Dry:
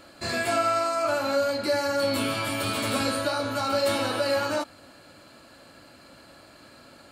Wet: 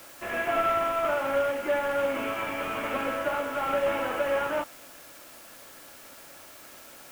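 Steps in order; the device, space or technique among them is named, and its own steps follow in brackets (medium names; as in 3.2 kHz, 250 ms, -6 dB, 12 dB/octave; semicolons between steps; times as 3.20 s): army field radio (band-pass 360–3000 Hz; CVSD coder 16 kbps; white noise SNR 20 dB)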